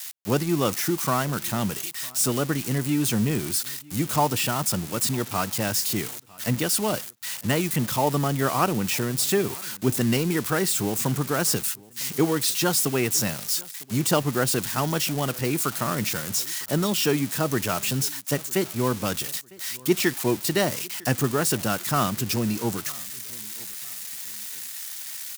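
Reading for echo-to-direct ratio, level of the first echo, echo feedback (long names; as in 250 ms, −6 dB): −23.5 dB, −24.0 dB, 34%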